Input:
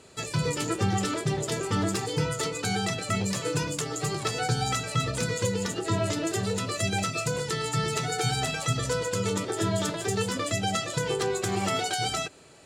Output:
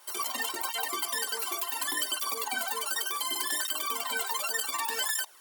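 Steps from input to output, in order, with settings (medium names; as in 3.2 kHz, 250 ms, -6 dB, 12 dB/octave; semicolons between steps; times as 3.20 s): speed mistake 33 rpm record played at 78 rpm; high-pass 700 Hz 12 dB/octave; treble shelf 4.8 kHz +7 dB; band-stop 6.1 kHz, Q 17; cancelling through-zero flanger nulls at 0.68 Hz, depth 4.4 ms; trim -1 dB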